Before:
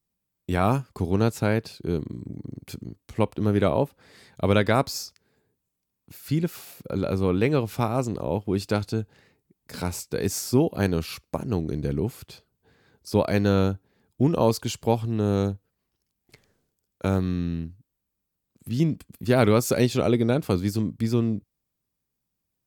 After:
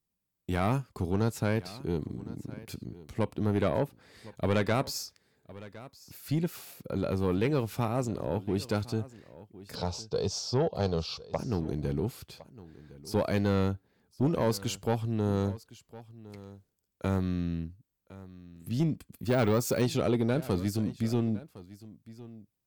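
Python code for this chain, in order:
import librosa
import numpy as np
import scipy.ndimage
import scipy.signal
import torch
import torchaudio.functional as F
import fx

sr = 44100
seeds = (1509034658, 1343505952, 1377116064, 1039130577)

y = fx.curve_eq(x, sr, hz=(160.0, 300.0, 460.0, 790.0, 1200.0, 1900.0, 3400.0, 5300.0, 11000.0), db=(0, -10, 4, 5, 0, -15, 4, 5, -26), at=(9.75, 11.39))
y = 10.0 ** (-15.5 / 20.0) * np.tanh(y / 10.0 ** (-15.5 / 20.0))
y = y + 10.0 ** (-18.5 / 20.0) * np.pad(y, (int(1060 * sr / 1000.0), 0))[:len(y)]
y = fx.resample_bad(y, sr, factor=2, down='filtered', up='hold', at=(19.27, 19.82))
y = F.gain(torch.from_numpy(y), -3.5).numpy()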